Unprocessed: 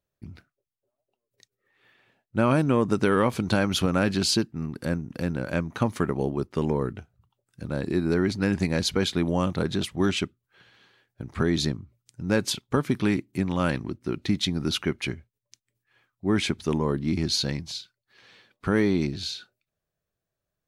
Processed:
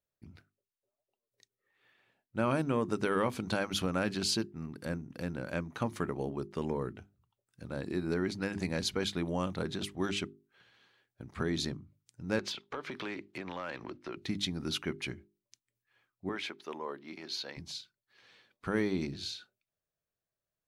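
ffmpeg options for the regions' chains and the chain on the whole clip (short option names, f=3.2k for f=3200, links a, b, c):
-filter_complex "[0:a]asettb=1/sr,asplit=3[a][b][c];[a]atrim=end=12.394[d];[b]atrim=start=12.39:end=14.17,asetpts=PTS-STARTPTS,afade=t=in:d=0.004:c=qsin,afade=t=out:st=1.776:d=0.004:c=qsin,acrossover=split=370 5100:gain=0.178 1 0.0794[e][f][g];[e][f][g]amix=inputs=3:normalize=0,acompressor=threshold=-39dB:ratio=4:attack=3.2:release=140:knee=1:detection=peak,aeval=exprs='0.0841*sin(PI/2*2.24*val(0)/0.0841)':c=same[h];[c]atrim=start=14.166[i];[d][h]acrossfade=d=0.004:c1=hsin:c2=qsin[j];[j][i]acrossfade=d=0.004:c1=qsin:c2=hsin,asettb=1/sr,asplit=3[k][l][m];[k]atrim=end=16.294[n];[l]atrim=start=16.29:end=17.57,asetpts=PTS-STARTPTS,afade=t=in:d=0.004:c=qsin,afade=t=out:st=1.276:d=0.004:c=qsin,highpass=520,equalizer=f=8.7k:w=0.82:g=-14.5[o];[m]atrim=start=17.566[p];[n][o]acrossfade=d=0.004:c1=hsin:c2=qsin[q];[q][p]acrossfade=d=0.004:c1=qsin:c2=hsin,lowshelf=f=220:g=-3.5,bandreject=f=50:t=h:w=6,bandreject=f=100:t=h:w=6,bandreject=f=150:t=h:w=6,bandreject=f=200:t=h:w=6,bandreject=f=250:t=h:w=6,bandreject=f=300:t=h:w=6,bandreject=f=350:t=h:w=6,bandreject=f=400:t=h:w=6,volume=-7dB"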